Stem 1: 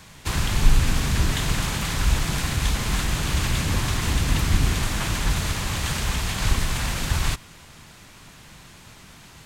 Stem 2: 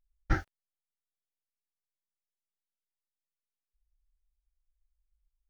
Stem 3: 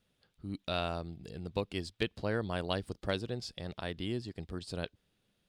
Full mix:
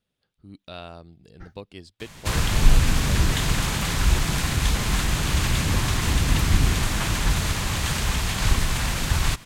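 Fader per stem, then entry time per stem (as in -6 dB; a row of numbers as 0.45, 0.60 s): +1.0, -17.5, -4.5 dB; 2.00, 1.10, 0.00 s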